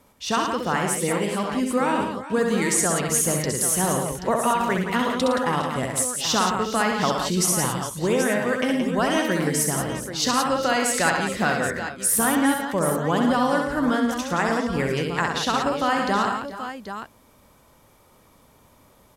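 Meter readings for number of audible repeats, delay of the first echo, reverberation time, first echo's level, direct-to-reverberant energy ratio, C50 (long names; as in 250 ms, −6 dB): 5, 66 ms, no reverb audible, −4.5 dB, no reverb audible, no reverb audible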